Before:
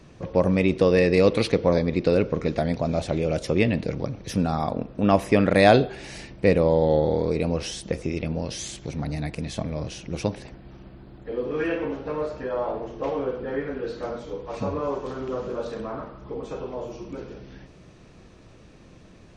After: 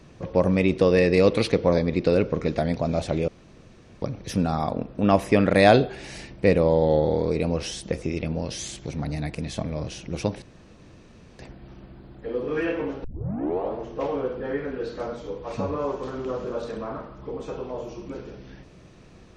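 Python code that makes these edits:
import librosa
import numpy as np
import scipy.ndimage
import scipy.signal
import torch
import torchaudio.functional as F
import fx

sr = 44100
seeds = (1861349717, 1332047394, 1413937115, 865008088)

y = fx.edit(x, sr, fx.room_tone_fill(start_s=3.28, length_s=0.74),
    fx.insert_room_tone(at_s=10.42, length_s=0.97),
    fx.tape_start(start_s=12.07, length_s=0.7), tone=tone)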